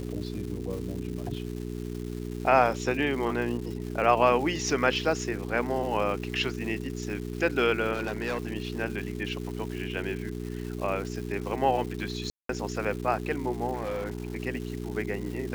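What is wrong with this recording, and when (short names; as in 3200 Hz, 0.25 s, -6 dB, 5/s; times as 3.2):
crackle 470/s -37 dBFS
hum 60 Hz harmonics 7 -35 dBFS
7.93–8.55 clipped -26 dBFS
12.3–12.49 gap 0.193 s
13.73–14.37 clipped -28 dBFS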